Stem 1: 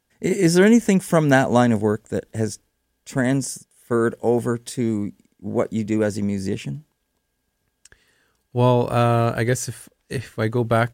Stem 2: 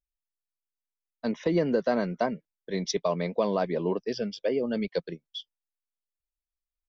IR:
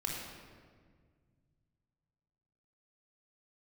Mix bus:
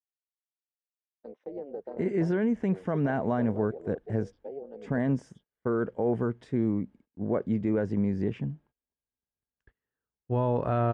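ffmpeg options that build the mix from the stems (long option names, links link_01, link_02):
-filter_complex "[0:a]dynaudnorm=framelen=150:gausssize=9:maxgain=4dB,alimiter=limit=-10.5dB:level=0:latency=1:release=39,lowpass=1600,adelay=1750,volume=-7dB[link_01];[1:a]deesser=0.95,tremolo=f=280:d=0.919,bandpass=frequency=440:width_type=q:width=2.6:csg=0,volume=-5.5dB[link_02];[link_01][link_02]amix=inputs=2:normalize=0,agate=range=-22dB:threshold=-56dB:ratio=16:detection=peak"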